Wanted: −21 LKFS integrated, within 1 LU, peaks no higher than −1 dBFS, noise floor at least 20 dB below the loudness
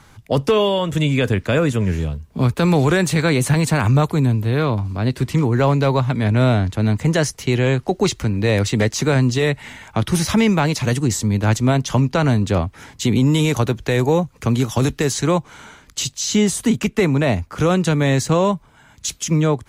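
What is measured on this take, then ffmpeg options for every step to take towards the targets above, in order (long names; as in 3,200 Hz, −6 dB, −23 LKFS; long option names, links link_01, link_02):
integrated loudness −18.5 LKFS; sample peak −6.0 dBFS; target loudness −21.0 LKFS
→ -af "volume=-2.5dB"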